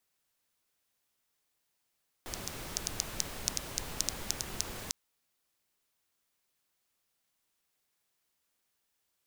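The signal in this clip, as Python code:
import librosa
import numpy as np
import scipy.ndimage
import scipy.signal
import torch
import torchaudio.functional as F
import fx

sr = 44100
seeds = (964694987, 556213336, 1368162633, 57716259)

y = fx.rain(sr, seeds[0], length_s=2.65, drops_per_s=5.5, hz=5900.0, bed_db=-1.5)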